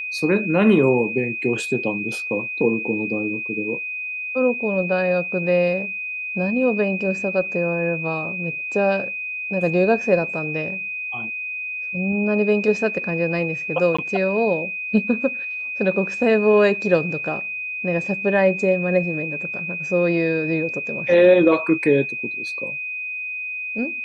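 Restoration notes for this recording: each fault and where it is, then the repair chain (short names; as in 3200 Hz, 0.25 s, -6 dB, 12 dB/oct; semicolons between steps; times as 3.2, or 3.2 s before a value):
tone 2500 Hz -26 dBFS
13.97–13.98 gap 15 ms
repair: notch 2500 Hz, Q 30; interpolate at 13.97, 15 ms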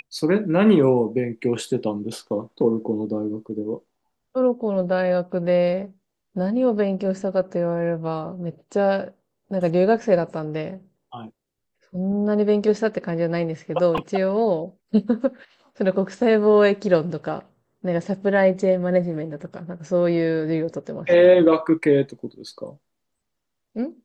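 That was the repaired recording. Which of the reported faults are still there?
none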